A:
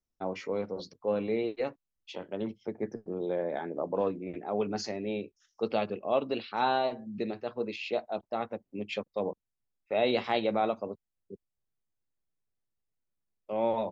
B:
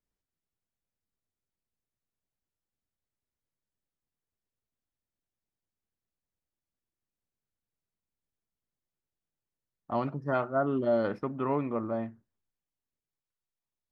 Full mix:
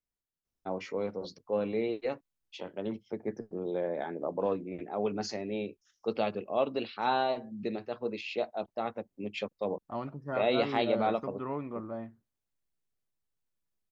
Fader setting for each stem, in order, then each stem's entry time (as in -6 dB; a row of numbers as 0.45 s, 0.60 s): -1.0 dB, -6.5 dB; 0.45 s, 0.00 s